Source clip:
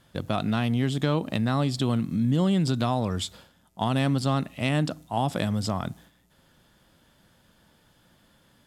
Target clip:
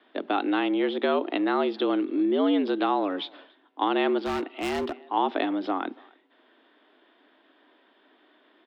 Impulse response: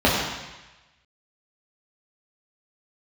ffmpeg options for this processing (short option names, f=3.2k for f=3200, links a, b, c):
-filter_complex "[0:a]asplit=2[a][b];[b]adelay=280,highpass=300,lowpass=3.4k,asoftclip=type=hard:threshold=-21dB,volume=-25dB[c];[a][c]amix=inputs=2:normalize=0,highpass=f=190:t=q:w=0.5412,highpass=f=190:t=q:w=1.307,lowpass=f=3.4k:t=q:w=0.5176,lowpass=f=3.4k:t=q:w=0.7071,lowpass=f=3.4k:t=q:w=1.932,afreqshift=91,asplit=3[d][e][f];[d]afade=t=out:st=4.18:d=0.02[g];[e]asoftclip=type=hard:threshold=-28dB,afade=t=in:st=4.18:d=0.02,afade=t=out:st=5.04:d=0.02[h];[f]afade=t=in:st=5.04:d=0.02[i];[g][h][i]amix=inputs=3:normalize=0,volume=2.5dB"